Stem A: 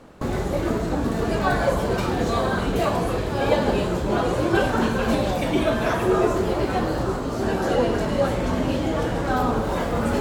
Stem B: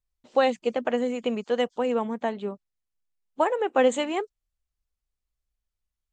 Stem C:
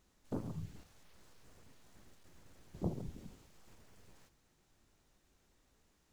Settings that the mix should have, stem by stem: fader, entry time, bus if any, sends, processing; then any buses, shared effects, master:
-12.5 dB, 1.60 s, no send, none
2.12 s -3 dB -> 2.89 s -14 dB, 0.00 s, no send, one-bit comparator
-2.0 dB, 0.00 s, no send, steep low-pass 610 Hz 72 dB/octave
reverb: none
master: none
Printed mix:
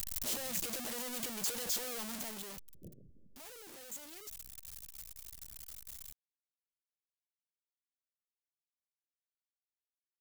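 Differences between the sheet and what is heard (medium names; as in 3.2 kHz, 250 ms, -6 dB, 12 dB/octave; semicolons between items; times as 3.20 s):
stem A: muted; master: extra pre-emphasis filter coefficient 0.8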